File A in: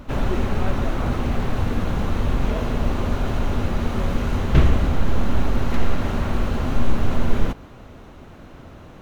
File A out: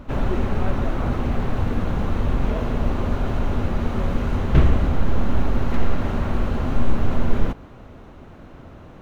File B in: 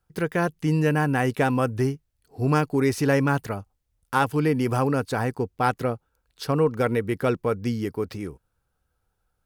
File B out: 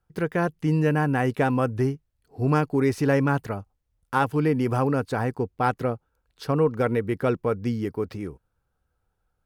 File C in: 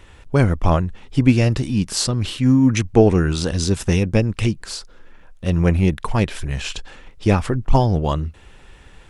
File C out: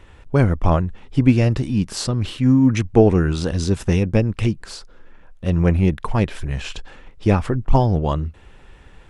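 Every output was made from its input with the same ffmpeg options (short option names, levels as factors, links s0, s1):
-af "highshelf=f=3000:g=-7.5"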